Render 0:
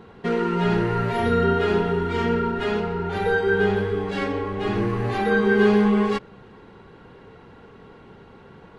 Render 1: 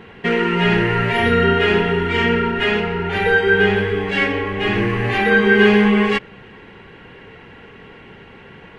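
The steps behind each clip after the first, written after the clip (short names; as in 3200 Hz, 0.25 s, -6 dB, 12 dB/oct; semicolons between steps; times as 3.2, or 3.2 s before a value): band shelf 2300 Hz +10.5 dB 1.1 oct; gain +4 dB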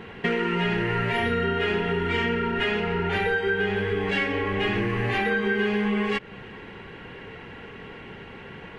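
compressor, threshold -22 dBFS, peak gain reduction 13.5 dB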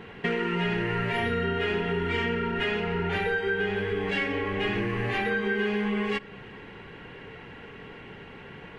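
shoebox room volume 2900 m³, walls furnished, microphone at 0.36 m; gain -3 dB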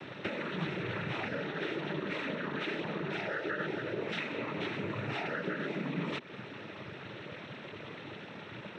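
compressor 10:1, threshold -32 dBFS, peak gain reduction 9.5 dB; noise vocoder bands 12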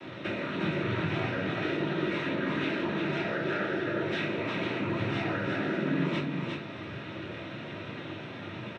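echo 0.357 s -3.5 dB; shoebox room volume 260 m³, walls furnished, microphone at 2.8 m; gain -2.5 dB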